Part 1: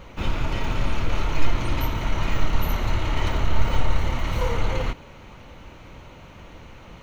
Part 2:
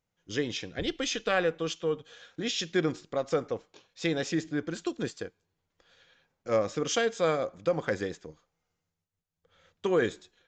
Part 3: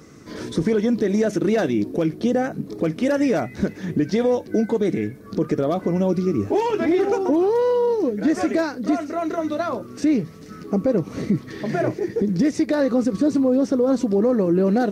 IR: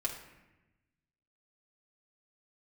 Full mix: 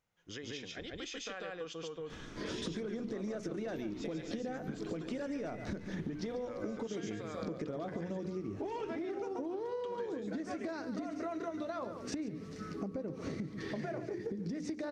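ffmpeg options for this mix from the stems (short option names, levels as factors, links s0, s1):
-filter_complex "[0:a]acompressor=threshold=0.0355:ratio=6,adelay=1950,volume=0.15[s0];[1:a]alimiter=limit=0.0631:level=0:latency=1:release=215,volume=0.794,asplit=2[s1][s2];[s2]volume=0.376[s3];[2:a]lowpass=7400,bandreject=f=60:t=h:w=6,bandreject=f=120:t=h:w=6,bandreject=f=180:t=h:w=6,bandreject=f=240:t=h:w=6,bandreject=f=300:t=h:w=6,bandreject=f=360:t=h:w=6,bandreject=f=420:t=h:w=6,bandreject=f=480:t=h:w=6,acompressor=threshold=0.0501:ratio=3,adelay=2100,volume=0.596,asplit=2[s4][s5];[s5]volume=0.237[s6];[s0][s1]amix=inputs=2:normalize=0,equalizer=f=1500:w=0.53:g=5,acompressor=threshold=0.00282:ratio=2,volume=1[s7];[s3][s6]amix=inputs=2:normalize=0,aecho=0:1:142:1[s8];[s4][s7][s8]amix=inputs=3:normalize=0,acompressor=threshold=0.0158:ratio=6"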